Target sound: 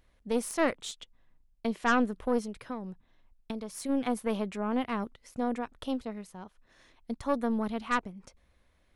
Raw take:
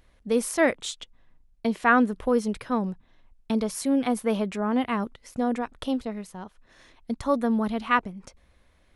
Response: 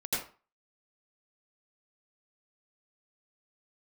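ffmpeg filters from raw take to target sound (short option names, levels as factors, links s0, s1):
-filter_complex "[0:a]aeval=exprs='0.447*(cos(1*acos(clip(val(0)/0.447,-1,1)))-cos(1*PI/2))+0.0398*(cos(3*acos(clip(val(0)/0.447,-1,1)))-cos(3*PI/2))+0.0708*(cos(4*acos(clip(val(0)/0.447,-1,1)))-cos(4*PI/2))+0.0282*(cos(5*acos(clip(val(0)/0.447,-1,1)))-cos(5*PI/2))+0.00316*(cos(6*acos(clip(val(0)/0.447,-1,1)))-cos(6*PI/2))':c=same,asplit=3[s0][s1][s2];[s0]afade=t=out:st=2.45:d=0.02[s3];[s1]acompressor=threshold=0.0447:ratio=5,afade=t=in:st=2.45:d=0.02,afade=t=out:st=3.88:d=0.02[s4];[s2]afade=t=in:st=3.88:d=0.02[s5];[s3][s4][s5]amix=inputs=3:normalize=0,volume=0.473"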